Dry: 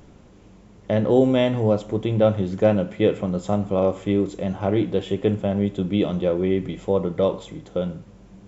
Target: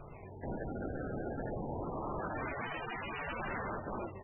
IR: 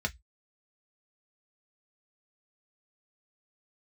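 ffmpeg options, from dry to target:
-filter_complex "[0:a]asoftclip=type=tanh:threshold=-21.5dB,equalizer=frequency=125:width_type=o:width=1:gain=-10,equalizer=frequency=1000:width_type=o:width=1:gain=-10,equalizer=frequency=2000:width_type=o:width=1:gain=-11,equalizer=frequency=4000:width_type=o:width=1:gain=-4,asetrate=88200,aresample=44100,equalizer=frequency=2200:width=0.7:gain=-7.5,asplit=2[link_01][link_02];[link_02]aecho=0:1:105:0.473[link_03];[link_01][link_03]amix=inputs=2:normalize=0,asplit=4[link_04][link_05][link_06][link_07];[link_05]asetrate=22050,aresample=44100,atempo=2,volume=-14dB[link_08];[link_06]asetrate=58866,aresample=44100,atempo=0.749154,volume=-11dB[link_09];[link_07]asetrate=66075,aresample=44100,atempo=0.66742,volume=-10dB[link_10];[link_04][link_08][link_09][link_10]amix=inputs=4:normalize=0,alimiter=limit=-23dB:level=0:latency=1:release=88,acrusher=samples=24:mix=1:aa=0.000001:lfo=1:lforange=38.4:lforate=0.25,acontrast=28,aeval=exprs='(mod(31.6*val(0)+1,2)-1)/31.6':channel_layout=same,volume=-3.5dB" -ar 22050 -c:a libmp3lame -b:a 8k

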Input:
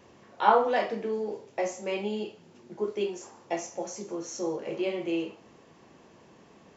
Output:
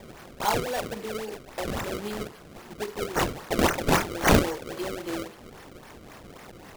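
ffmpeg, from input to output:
ffmpeg -i in.wav -filter_complex "[0:a]asettb=1/sr,asplit=3[link_01][link_02][link_03];[link_01]atrim=end=0.674[link_04];[link_02]atrim=start=0.67:end=1.81,asetpts=PTS-STARTPTS,afade=type=in:duration=0.004:curve=qsin,afade=type=out:start_time=1.136:duration=0.004:curve=qsin,acrossover=split=2700[link_05][link_06];[link_06]acompressor=threshold=-49dB:ratio=4:attack=1:release=60[link_07];[link_05][link_07]amix=inputs=2:normalize=0[link_08];[link_03]atrim=start=1.806[link_09];[link_04][link_08]acrossfade=duration=0.004:curve1=hsin:curve2=qsin[link_10];[link_10][link_09]acrossfade=duration=0.004:curve1=qsin:curve2=hsin,asettb=1/sr,asplit=3[link_11][link_12][link_13];[link_11]atrim=end=3.104[link_14];[link_12]atrim=start=3.1:end=4.55,asetpts=PTS-STARTPTS,afade=type=in:duration=0.004:curve=qsin,afade=type=out:start_time=1.446:duration=0.004:curve=qsin,equalizer=frequency=1100:width_type=o:width=2.5:gain=7.5[link_15];[link_13]atrim=start=4.546[link_16];[link_14][link_15]acrossfade=duration=0.004:curve1=hsin:curve2=qsin[link_17];[link_17][link_16]acrossfade=duration=0.004:curve1=qsin:curve2=hsin,asplit=2[link_18][link_19];[link_19]acompressor=threshold=-41dB:ratio=6,volume=2.5dB[link_20];[link_18][link_20]amix=inputs=2:normalize=0,aexciter=amount=15.1:drive=5:freq=3900,acrusher=samples=29:mix=1:aa=0.000001:lfo=1:lforange=46.4:lforate=3.7,volume=-5.5dB" out.wav

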